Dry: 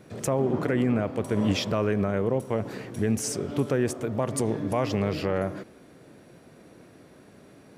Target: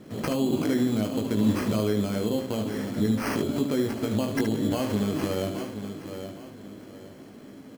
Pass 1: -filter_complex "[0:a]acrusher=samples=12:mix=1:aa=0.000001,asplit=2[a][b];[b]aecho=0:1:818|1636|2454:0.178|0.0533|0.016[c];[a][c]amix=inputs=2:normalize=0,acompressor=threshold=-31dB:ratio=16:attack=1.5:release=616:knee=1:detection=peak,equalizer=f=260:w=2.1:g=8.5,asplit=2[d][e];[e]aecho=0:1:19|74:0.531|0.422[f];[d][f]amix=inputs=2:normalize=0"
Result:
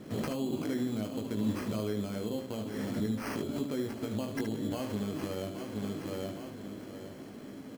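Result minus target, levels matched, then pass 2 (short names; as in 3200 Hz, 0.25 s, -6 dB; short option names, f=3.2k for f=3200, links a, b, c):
compressor: peak gain reduction +8.5 dB
-filter_complex "[0:a]acrusher=samples=12:mix=1:aa=0.000001,asplit=2[a][b];[b]aecho=0:1:818|1636|2454:0.178|0.0533|0.016[c];[a][c]amix=inputs=2:normalize=0,acompressor=threshold=-22dB:ratio=16:attack=1.5:release=616:knee=1:detection=peak,equalizer=f=260:w=2.1:g=8.5,asplit=2[d][e];[e]aecho=0:1:19|74:0.531|0.422[f];[d][f]amix=inputs=2:normalize=0"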